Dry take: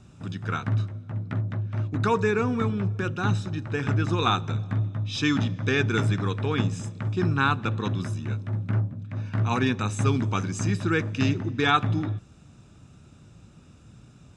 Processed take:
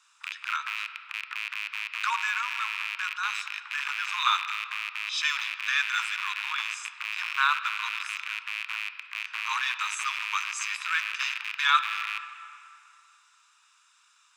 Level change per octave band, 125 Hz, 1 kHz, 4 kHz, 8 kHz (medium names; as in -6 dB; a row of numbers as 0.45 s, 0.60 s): under -40 dB, -0.5 dB, +4.0 dB, +2.5 dB